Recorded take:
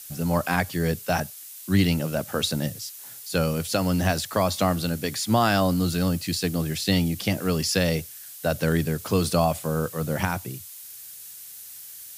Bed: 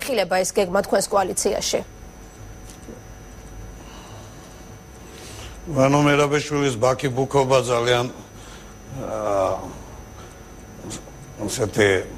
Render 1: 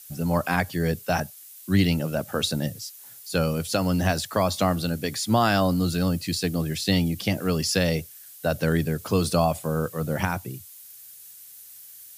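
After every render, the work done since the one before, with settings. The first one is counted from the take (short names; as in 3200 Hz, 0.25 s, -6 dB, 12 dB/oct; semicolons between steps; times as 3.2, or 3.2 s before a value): denoiser 6 dB, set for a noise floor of -42 dBFS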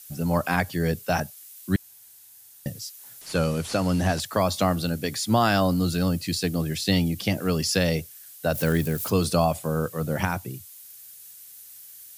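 1.76–2.66 room tone; 3.21–4.2 delta modulation 64 kbps, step -37 dBFS; 8.54–9.1 switching spikes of -28.5 dBFS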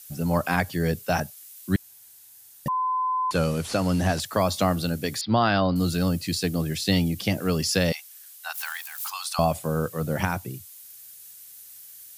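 2.68–3.31 bleep 1020 Hz -22 dBFS; 5.21–5.76 Chebyshev low-pass 4800 Hz, order 6; 7.92–9.39 Chebyshev high-pass 790 Hz, order 6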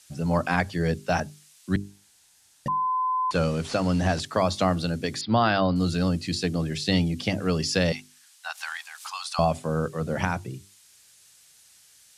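Bessel low-pass 6700 Hz, order 4; notches 50/100/150/200/250/300/350/400 Hz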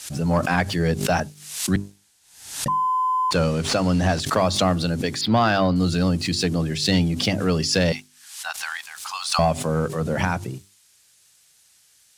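sample leveller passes 1; backwards sustainer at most 83 dB/s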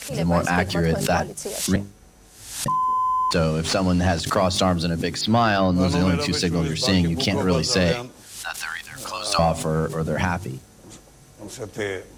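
add bed -10.5 dB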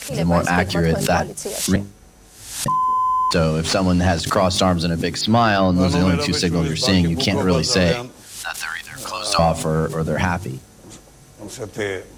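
gain +3 dB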